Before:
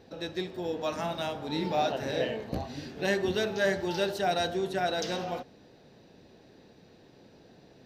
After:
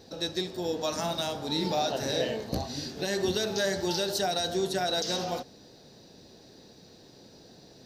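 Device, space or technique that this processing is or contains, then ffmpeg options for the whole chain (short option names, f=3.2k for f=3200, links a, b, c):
over-bright horn tweeter: -af "highshelf=f=3.5k:t=q:w=1.5:g=8.5,alimiter=limit=-20dB:level=0:latency=1:release=96,volume=2dB"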